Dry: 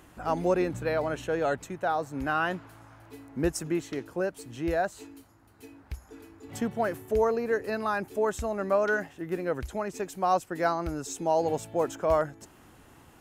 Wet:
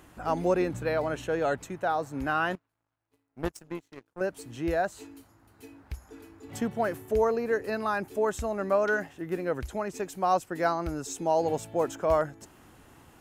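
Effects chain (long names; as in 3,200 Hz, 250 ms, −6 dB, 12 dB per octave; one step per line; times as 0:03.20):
0:02.55–0:04.21: power curve on the samples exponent 2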